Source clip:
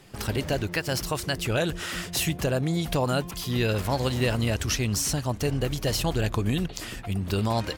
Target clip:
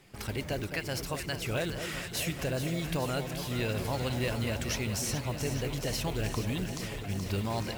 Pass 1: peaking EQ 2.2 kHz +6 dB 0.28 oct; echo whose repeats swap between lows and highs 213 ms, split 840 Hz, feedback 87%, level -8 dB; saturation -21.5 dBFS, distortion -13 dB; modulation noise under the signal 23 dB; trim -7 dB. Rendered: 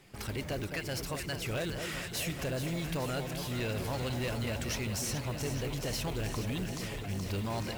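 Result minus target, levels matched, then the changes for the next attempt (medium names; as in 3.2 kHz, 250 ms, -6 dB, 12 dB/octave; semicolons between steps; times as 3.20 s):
saturation: distortion +14 dB
change: saturation -11.5 dBFS, distortion -28 dB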